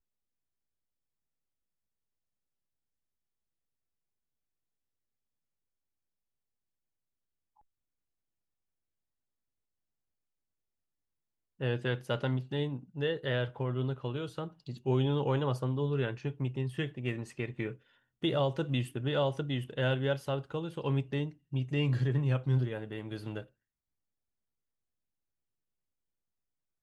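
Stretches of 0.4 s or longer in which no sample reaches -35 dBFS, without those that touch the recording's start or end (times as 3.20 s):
17.71–18.24 s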